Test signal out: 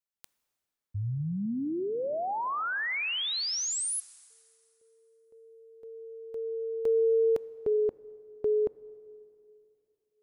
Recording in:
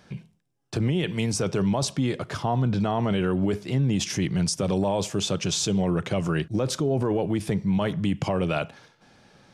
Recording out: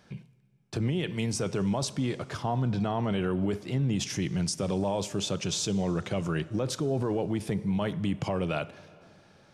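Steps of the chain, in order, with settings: plate-style reverb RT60 2.8 s, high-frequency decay 0.75×, DRR 17.5 dB; trim -4.5 dB

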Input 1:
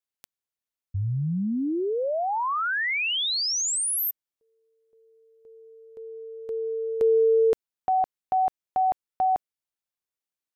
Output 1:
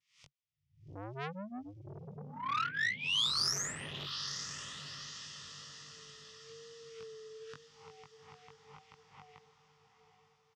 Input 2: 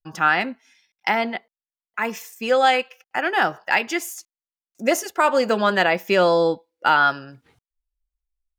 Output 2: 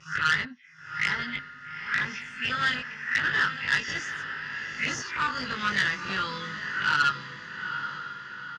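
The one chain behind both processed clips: reverse spectral sustain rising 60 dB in 0.45 s; Chebyshev band-stop 290–1600 Hz, order 2; resonant low shelf 590 Hz -8 dB, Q 1.5; in parallel at -10 dB: Schmitt trigger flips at -20 dBFS; on the sum: touch-sensitive phaser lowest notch 260 Hz, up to 2.3 kHz, full sweep at -22.5 dBFS; vibrato 0.93 Hz 44 cents; cabinet simulation 120–5100 Hz, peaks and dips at 140 Hz +7 dB, 210 Hz -5 dB, 330 Hz -10 dB, 720 Hz -4 dB, 1.9 kHz +7 dB, 4.1 kHz -8 dB; doubling 20 ms -2 dB; echo that smears into a reverb 857 ms, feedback 49%, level -10 dB; transformer saturation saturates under 2.6 kHz

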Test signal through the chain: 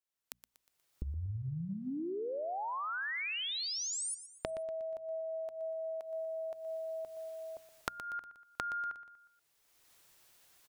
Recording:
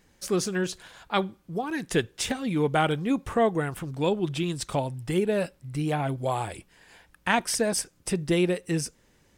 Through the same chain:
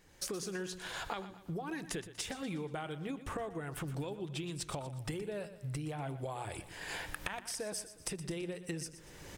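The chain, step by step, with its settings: recorder AGC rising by 25 dB/s; peaking EQ 230 Hz -9.5 dB 0.24 oct; hum notches 60/120/180/240 Hz; compression 16:1, threshold -34 dBFS; on a send: feedback delay 120 ms, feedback 46%, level -13.5 dB; on the sum: trim -2.5 dB

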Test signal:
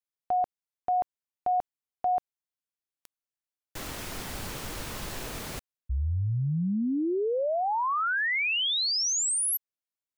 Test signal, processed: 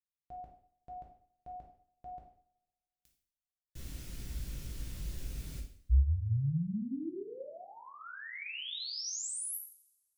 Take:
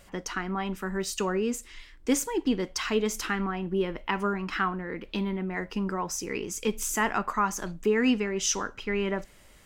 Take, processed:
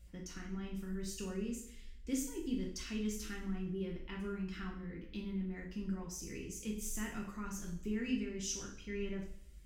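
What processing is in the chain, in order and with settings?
amplifier tone stack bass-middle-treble 10-0-1; two-slope reverb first 0.55 s, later 1.6 s, from -25 dB, DRR -2 dB; trim +5 dB

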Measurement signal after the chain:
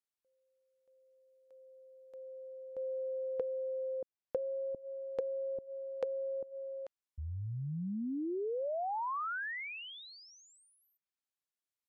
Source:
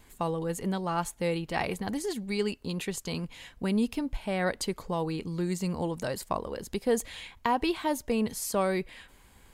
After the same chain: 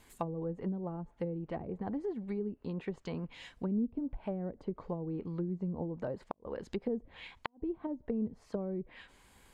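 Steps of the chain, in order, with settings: low-pass that closes with the level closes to 310 Hz, closed at -26 dBFS; bass shelf 140 Hz -5.5 dB; inverted gate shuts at -18 dBFS, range -39 dB; trim -2.5 dB

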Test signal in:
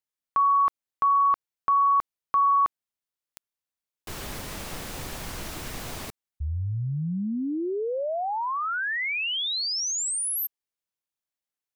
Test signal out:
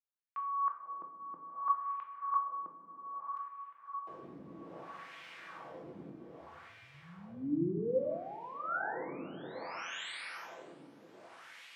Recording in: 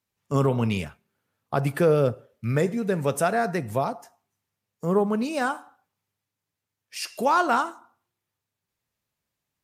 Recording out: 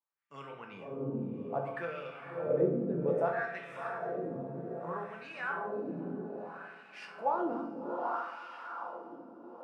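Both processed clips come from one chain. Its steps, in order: treble shelf 4.3 kHz -9.5 dB; echo that smears into a reverb 613 ms, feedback 59%, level -4 dB; wah-wah 0.62 Hz 260–2400 Hz, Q 2.2; high-pass 130 Hz 12 dB/octave; bass shelf 190 Hz +5 dB; feedback comb 170 Hz, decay 0.46 s, harmonics all, mix 70%; simulated room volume 140 m³, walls mixed, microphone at 0.63 m; trim +2.5 dB

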